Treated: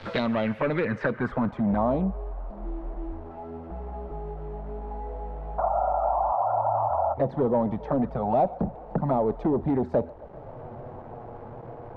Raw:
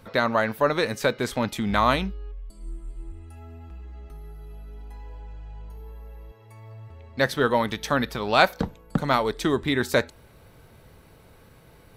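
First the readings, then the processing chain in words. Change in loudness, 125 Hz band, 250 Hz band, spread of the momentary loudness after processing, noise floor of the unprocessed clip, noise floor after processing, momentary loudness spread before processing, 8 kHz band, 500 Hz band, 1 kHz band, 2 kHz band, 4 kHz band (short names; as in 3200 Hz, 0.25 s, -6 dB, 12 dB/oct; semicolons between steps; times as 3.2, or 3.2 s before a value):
-3.5 dB, +1.0 dB, +1.5 dB, 17 LU, -53 dBFS, -43 dBFS, 22 LU, under -25 dB, 0.0 dB, +0.5 dB, -10.5 dB, under -15 dB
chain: low-pass opened by the level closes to 2000 Hz, open at -21.5 dBFS; painted sound noise, 5.58–7.14, 550–1400 Hz -28 dBFS; high shelf 7000 Hz +5.5 dB; in parallel at +2.5 dB: compressor 10:1, threshold -33 dBFS, peak gain reduction 21 dB; on the sum: envelope flanger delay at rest 10.2 ms, full sweep at -16 dBFS; dynamic EQ 200 Hz, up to +6 dB, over -36 dBFS, Q 0.79; soft clip -18.5 dBFS, distortion -10 dB; bit-crush 8-bit; low-pass sweep 3900 Hz -> 750 Hz, 0.12–1.85; on a send: band-limited delay 0.13 s, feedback 63%, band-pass 1100 Hz, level -19.5 dB; on the sum: three-band squash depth 40%; gain -2 dB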